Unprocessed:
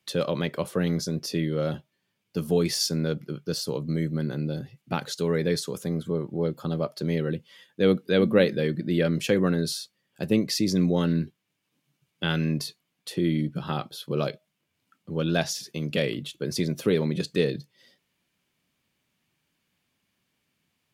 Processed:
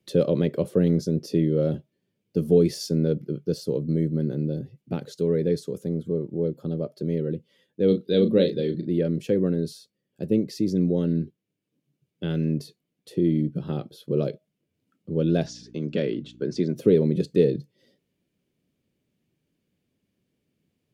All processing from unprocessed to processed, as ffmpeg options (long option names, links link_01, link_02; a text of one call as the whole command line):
ffmpeg -i in.wav -filter_complex "[0:a]asettb=1/sr,asplit=3[link_01][link_02][link_03];[link_01]atrim=end=7.884[link_04];[link_02]atrim=start=7.88:end=8.87,asetpts=PTS-STARTPTS,afade=type=in:duration=0.004:curve=qsin,afade=type=out:start_time=0.986:duration=0.004:curve=qsin,equalizer=frequency=3800:width=2.4:gain=14.5,asplit=2[link_05][link_06];[link_06]adelay=36,volume=-8.5dB[link_07];[link_05][link_07]amix=inputs=2:normalize=0,atrim=end_sample=43659[link_08];[link_03]atrim=start=8.866[link_09];[link_04][link_08]acrossfade=duration=0.004:curve1=hsin:curve2=qsin[link_10];[link_10][link_09]acrossfade=duration=0.004:curve1=qsin:curve2=hsin,asettb=1/sr,asplit=3[link_11][link_12][link_13];[link_11]atrim=end=15.464[link_14];[link_12]atrim=start=15.46:end=16.76,asetpts=PTS-STARTPTS,afade=type=in:duration=0.004:curve=qsin,afade=type=out:start_time=1.296:duration=0.004:curve=qsin,aeval=exprs='val(0)+0.00631*(sin(2*PI*60*n/s)+sin(2*PI*2*60*n/s)/2+sin(2*PI*3*60*n/s)/3+sin(2*PI*4*60*n/s)/4+sin(2*PI*5*60*n/s)/5)':channel_layout=same,highpass=180,equalizer=frequency=500:width_type=q:width=4:gain=-5,equalizer=frequency=1000:width_type=q:width=4:gain=5,equalizer=frequency=1500:width_type=q:width=4:gain=8,lowpass=frequency=6800:width=0.5412,lowpass=frequency=6800:width=1.3066[link_15];[link_13]atrim=start=16.756[link_16];[link_14][link_15]acrossfade=duration=0.004:curve1=hsin:curve2=qsin[link_17];[link_17][link_16]acrossfade=duration=0.004:curve1=qsin:curve2=hsin,lowshelf=frequency=660:width_type=q:width=1.5:gain=11.5,dynaudnorm=framelen=980:gausssize=9:maxgain=11.5dB,volume=-6dB" out.wav